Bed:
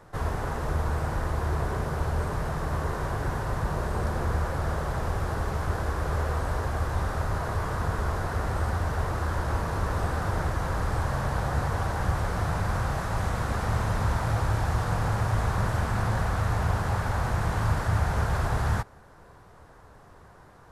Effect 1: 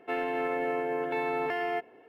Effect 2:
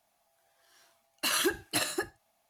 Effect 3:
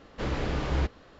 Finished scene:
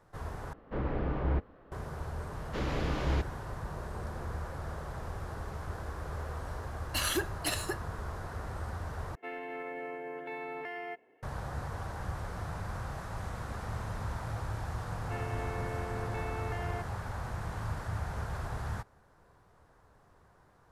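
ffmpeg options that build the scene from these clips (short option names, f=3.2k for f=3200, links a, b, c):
-filter_complex "[3:a]asplit=2[a][b];[1:a]asplit=2[c][d];[0:a]volume=-11dB[e];[a]lowpass=1.4k[f];[c]equalizer=f=2k:t=o:w=0.23:g=8.5[g];[e]asplit=3[h][i][j];[h]atrim=end=0.534[k];[f]atrim=end=1.19,asetpts=PTS-STARTPTS,volume=-2.5dB[l];[i]atrim=start=1.716:end=9.154[m];[g]atrim=end=2.08,asetpts=PTS-STARTPTS,volume=-10.5dB[n];[j]atrim=start=11.226[o];[b]atrim=end=1.19,asetpts=PTS-STARTPTS,volume=-3dB,afade=t=in:d=0.004:c=hsin,afade=t=out:st=1.186:d=0.004:c=hsin,adelay=2350[p];[2:a]atrim=end=2.49,asetpts=PTS-STARTPTS,volume=-3.5dB,afade=t=in:d=0.004:c=hsin,afade=t=out:st=2.486:d=0.004:c=hsin,adelay=5710[q];[d]atrim=end=2.08,asetpts=PTS-STARTPTS,volume=-10dB,afade=t=in:d=0.004:c=hsin,afade=t=out:st=2.076:d=0.004:c=hsin,adelay=15020[r];[k][l]acrossfade=d=0.004:c1=hsin:c2=hsin[s];[s][m]acrossfade=d=0.004:c1=hsin:c2=hsin[t];[t][n]acrossfade=d=0.004:c1=hsin:c2=hsin[u];[u][o]acrossfade=d=0.004:c1=hsin:c2=hsin[v];[v][p][q][r]amix=inputs=4:normalize=0"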